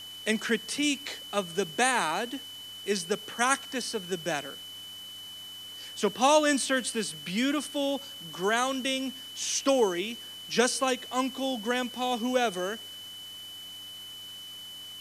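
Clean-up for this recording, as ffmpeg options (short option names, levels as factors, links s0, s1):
-af "adeclick=t=4,bandreject=f=98.2:t=h:w=4,bandreject=f=196.4:t=h:w=4,bandreject=f=294.6:t=h:w=4,bandreject=f=3000:w=30,afwtdn=0.0032"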